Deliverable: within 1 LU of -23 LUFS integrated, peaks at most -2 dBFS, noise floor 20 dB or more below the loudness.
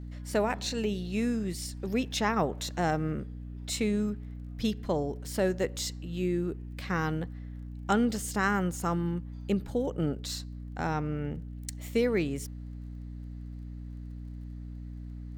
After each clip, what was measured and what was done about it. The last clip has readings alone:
tick rate 16 per s; hum 60 Hz; highest harmonic 300 Hz; hum level -38 dBFS; loudness -31.5 LUFS; peak level -13.5 dBFS; loudness target -23.0 LUFS
-> de-click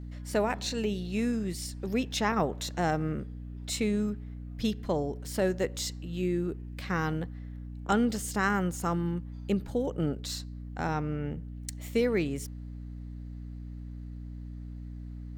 tick rate 0.065 per s; hum 60 Hz; highest harmonic 300 Hz; hum level -38 dBFS
-> de-hum 60 Hz, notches 5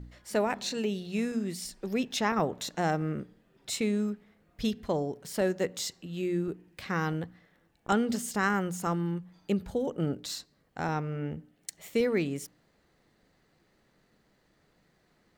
hum not found; loudness -31.5 LUFS; peak level -14.5 dBFS; loudness target -23.0 LUFS
-> trim +8.5 dB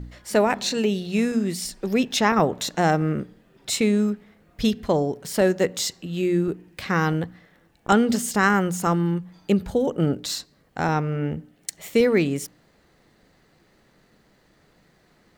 loudness -23.0 LUFS; peak level -6.0 dBFS; noise floor -61 dBFS

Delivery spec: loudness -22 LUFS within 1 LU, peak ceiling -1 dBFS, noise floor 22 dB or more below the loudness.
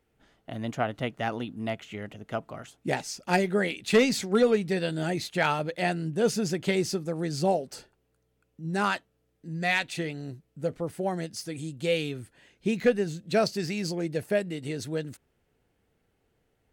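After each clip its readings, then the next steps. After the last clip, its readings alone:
loudness -28.5 LUFS; peak level -13.0 dBFS; loudness target -22.0 LUFS
-> trim +6.5 dB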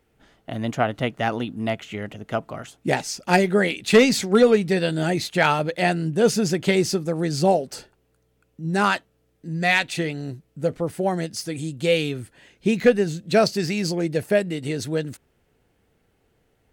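loudness -22.0 LUFS; peak level -6.5 dBFS; noise floor -67 dBFS

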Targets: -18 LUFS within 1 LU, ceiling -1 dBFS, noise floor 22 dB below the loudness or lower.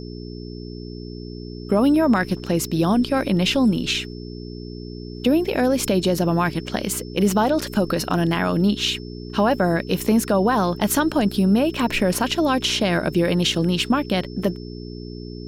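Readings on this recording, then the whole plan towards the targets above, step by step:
hum 60 Hz; highest harmonic 420 Hz; hum level -33 dBFS; steady tone 5.3 kHz; tone level -45 dBFS; loudness -20.5 LUFS; peak level -5.5 dBFS; loudness target -18.0 LUFS
-> de-hum 60 Hz, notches 7; band-stop 5.3 kHz, Q 30; trim +2.5 dB

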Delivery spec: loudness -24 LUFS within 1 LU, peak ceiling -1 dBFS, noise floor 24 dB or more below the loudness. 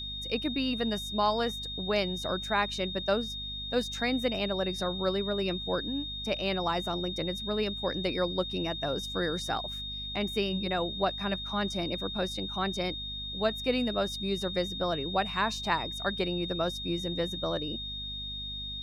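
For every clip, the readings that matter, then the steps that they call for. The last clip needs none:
hum 50 Hz; highest harmonic 250 Hz; hum level -42 dBFS; steady tone 3.7 kHz; tone level -36 dBFS; loudness -31.0 LUFS; peak level -13.0 dBFS; loudness target -24.0 LUFS
-> hum notches 50/100/150/200/250 Hz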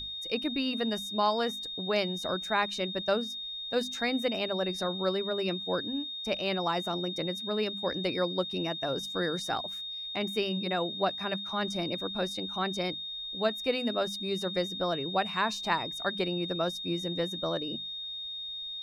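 hum not found; steady tone 3.7 kHz; tone level -36 dBFS
-> band-stop 3.7 kHz, Q 30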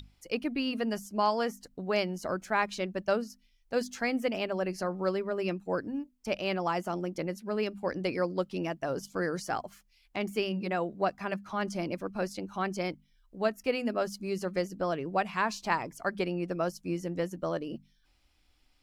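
steady tone not found; loudness -32.5 LUFS; peak level -13.5 dBFS; loudness target -24.0 LUFS
-> trim +8.5 dB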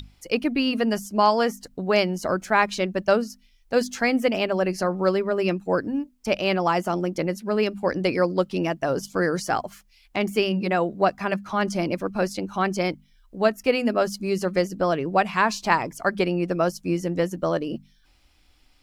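loudness -24.0 LUFS; peak level -5.0 dBFS; noise floor -60 dBFS

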